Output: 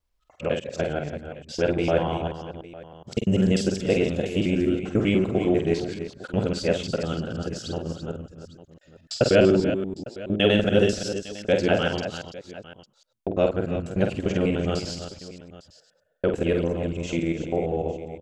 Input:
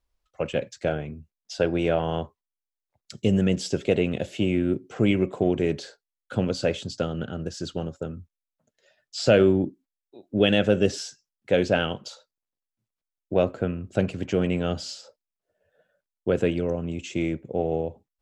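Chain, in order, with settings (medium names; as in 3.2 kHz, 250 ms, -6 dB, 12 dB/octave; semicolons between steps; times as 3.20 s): time reversed locally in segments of 99 ms; multi-tap echo 48/300/336/854 ms -6/-17/-10/-18 dB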